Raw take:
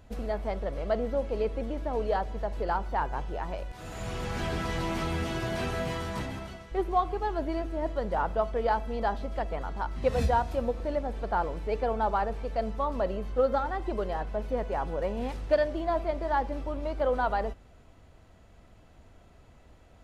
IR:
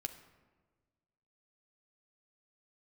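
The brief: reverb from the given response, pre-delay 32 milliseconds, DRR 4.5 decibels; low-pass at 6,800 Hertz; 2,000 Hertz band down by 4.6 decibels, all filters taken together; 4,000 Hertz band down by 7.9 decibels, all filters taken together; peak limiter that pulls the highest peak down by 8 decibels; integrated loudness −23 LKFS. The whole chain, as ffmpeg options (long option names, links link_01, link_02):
-filter_complex "[0:a]lowpass=6800,equalizer=frequency=2000:width_type=o:gain=-4.5,equalizer=frequency=4000:width_type=o:gain=-8.5,alimiter=limit=-21dB:level=0:latency=1,asplit=2[link_01][link_02];[1:a]atrim=start_sample=2205,adelay=32[link_03];[link_02][link_03]afir=irnorm=-1:irlink=0,volume=-2.5dB[link_04];[link_01][link_04]amix=inputs=2:normalize=0,volume=8.5dB"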